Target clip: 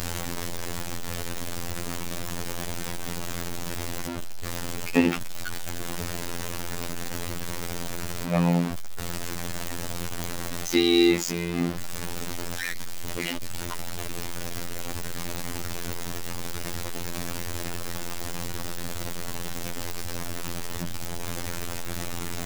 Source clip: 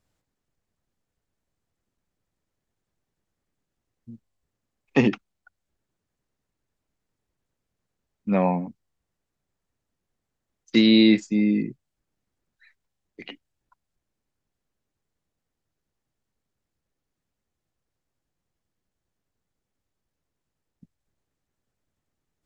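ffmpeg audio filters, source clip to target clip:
ffmpeg -i in.wav -af "aeval=exprs='val(0)+0.5*0.075*sgn(val(0))':channel_layout=same,afftfilt=real='hypot(re,im)*cos(PI*b)':imag='0':win_size=2048:overlap=0.75,volume=1dB" out.wav

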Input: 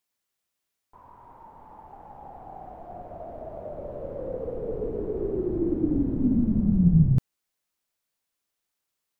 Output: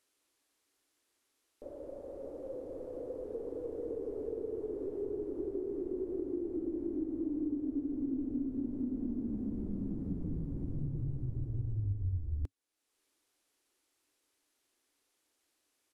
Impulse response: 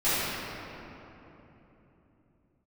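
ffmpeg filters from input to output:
-af "firequalizer=gain_entry='entry(180,0);entry(310,-10);entry(480,12);entry(1100,3)':delay=0.05:min_phase=1,acompressor=threshold=-35dB:ratio=4,asetrate=25442,aresample=44100"

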